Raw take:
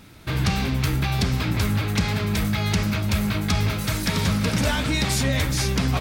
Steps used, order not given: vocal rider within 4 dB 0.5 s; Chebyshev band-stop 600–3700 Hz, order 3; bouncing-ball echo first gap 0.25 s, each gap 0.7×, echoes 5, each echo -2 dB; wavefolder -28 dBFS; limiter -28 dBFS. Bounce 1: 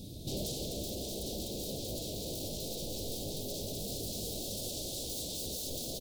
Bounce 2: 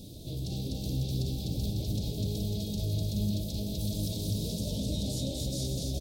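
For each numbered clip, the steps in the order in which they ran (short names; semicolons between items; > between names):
wavefolder > vocal rider > bouncing-ball echo > limiter > Chebyshev band-stop; vocal rider > limiter > Chebyshev band-stop > wavefolder > bouncing-ball echo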